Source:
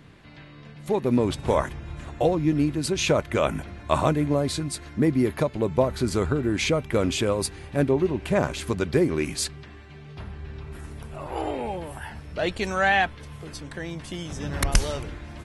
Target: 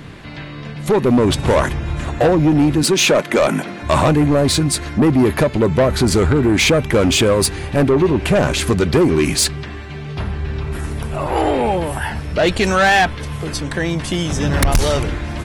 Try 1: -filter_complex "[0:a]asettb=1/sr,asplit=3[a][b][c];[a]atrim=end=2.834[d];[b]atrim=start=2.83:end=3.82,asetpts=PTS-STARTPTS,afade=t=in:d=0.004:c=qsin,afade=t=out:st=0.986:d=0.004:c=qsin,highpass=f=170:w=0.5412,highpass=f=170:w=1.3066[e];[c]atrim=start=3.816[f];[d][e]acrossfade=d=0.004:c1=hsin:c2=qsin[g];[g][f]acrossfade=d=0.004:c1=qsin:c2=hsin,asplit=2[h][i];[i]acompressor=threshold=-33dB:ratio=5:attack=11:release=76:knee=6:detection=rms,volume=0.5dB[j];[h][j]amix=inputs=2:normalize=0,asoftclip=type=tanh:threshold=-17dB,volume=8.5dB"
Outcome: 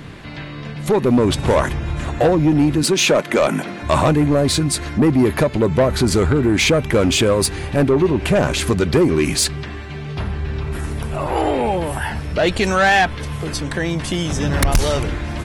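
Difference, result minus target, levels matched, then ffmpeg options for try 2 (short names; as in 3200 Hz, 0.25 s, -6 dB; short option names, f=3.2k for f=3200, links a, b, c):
compressor: peak gain reduction +9 dB
-filter_complex "[0:a]asettb=1/sr,asplit=3[a][b][c];[a]atrim=end=2.834[d];[b]atrim=start=2.83:end=3.82,asetpts=PTS-STARTPTS,afade=t=in:d=0.004:c=qsin,afade=t=out:st=0.986:d=0.004:c=qsin,highpass=f=170:w=0.5412,highpass=f=170:w=1.3066[e];[c]atrim=start=3.816[f];[d][e]acrossfade=d=0.004:c1=hsin:c2=qsin[g];[g][f]acrossfade=d=0.004:c1=qsin:c2=hsin,asplit=2[h][i];[i]acompressor=threshold=-22dB:ratio=5:attack=11:release=76:knee=6:detection=rms,volume=0.5dB[j];[h][j]amix=inputs=2:normalize=0,asoftclip=type=tanh:threshold=-17dB,volume=8.5dB"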